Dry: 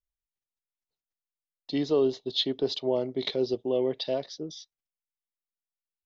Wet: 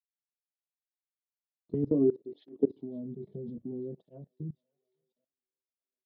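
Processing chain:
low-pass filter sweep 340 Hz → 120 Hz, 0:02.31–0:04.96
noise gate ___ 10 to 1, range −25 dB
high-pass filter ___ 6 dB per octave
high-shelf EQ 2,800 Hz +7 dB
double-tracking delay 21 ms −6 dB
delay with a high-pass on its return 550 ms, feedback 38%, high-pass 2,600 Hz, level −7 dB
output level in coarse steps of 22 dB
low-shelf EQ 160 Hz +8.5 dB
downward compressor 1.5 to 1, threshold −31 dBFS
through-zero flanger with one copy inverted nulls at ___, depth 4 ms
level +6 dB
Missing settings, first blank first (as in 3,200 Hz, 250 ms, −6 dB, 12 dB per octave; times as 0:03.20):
−56 dBFS, 86 Hz, 0.61 Hz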